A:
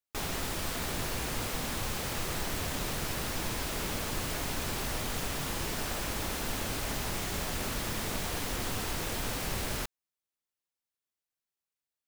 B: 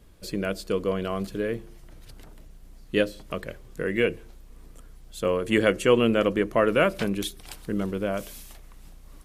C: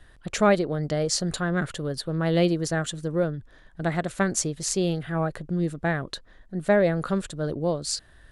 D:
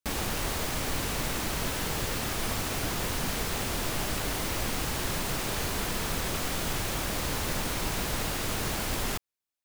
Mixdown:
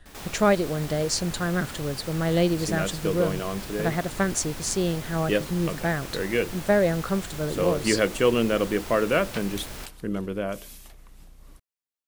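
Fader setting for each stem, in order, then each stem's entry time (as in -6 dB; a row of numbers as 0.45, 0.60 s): -4.5, -1.5, -0.5, -17.5 dB; 0.00, 2.35, 0.00, 0.00 s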